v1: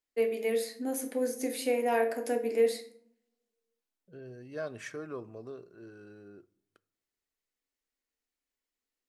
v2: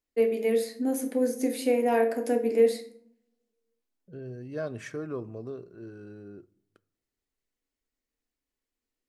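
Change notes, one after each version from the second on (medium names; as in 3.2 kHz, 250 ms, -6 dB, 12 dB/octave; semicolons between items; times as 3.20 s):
master: add bass shelf 410 Hz +10 dB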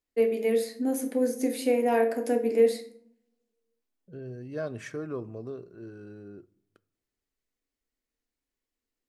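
no change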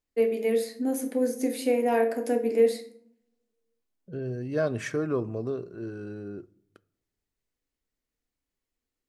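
second voice +7.0 dB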